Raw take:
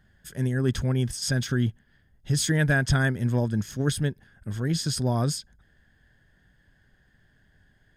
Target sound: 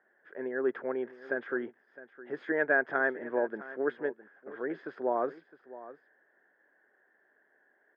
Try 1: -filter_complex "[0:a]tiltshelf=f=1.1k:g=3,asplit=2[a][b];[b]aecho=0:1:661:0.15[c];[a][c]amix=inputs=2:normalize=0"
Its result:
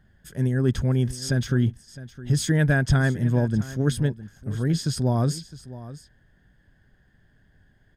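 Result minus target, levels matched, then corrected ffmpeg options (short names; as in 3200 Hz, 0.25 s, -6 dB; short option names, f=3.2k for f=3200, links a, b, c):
1000 Hz band -9.0 dB
-filter_complex "[0:a]asuperpass=centerf=850:order=8:qfactor=0.52,tiltshelf=f=1.1k:g=3,asplit=2[a][b];[b]aecho=0:1:661:0.15[c];[a][c]amix=inputs=2:normalize=0"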